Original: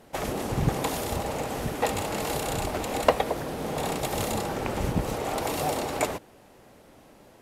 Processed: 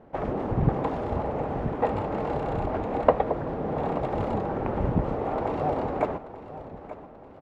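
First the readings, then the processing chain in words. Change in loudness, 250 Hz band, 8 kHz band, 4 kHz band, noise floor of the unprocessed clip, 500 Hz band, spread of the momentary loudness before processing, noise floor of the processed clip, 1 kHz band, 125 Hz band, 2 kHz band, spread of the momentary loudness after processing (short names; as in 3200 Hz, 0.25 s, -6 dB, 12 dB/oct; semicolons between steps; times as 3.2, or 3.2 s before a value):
+1.0 dB, +2.0 dB, under -30 dB, under -15 dB, -54 dBFS, +2.0 dB, 6 LU, -47 dBFS, +1.0 dB, +2.0 dB, -6.5 dB, 16 LU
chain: LPF 1200 Hz 12 dB/oct; on a send: feedback echo 0.884 s, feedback 43%, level -14.5 dB; on the sum: record warp 78 rpm, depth 100 cents; gain +2 dB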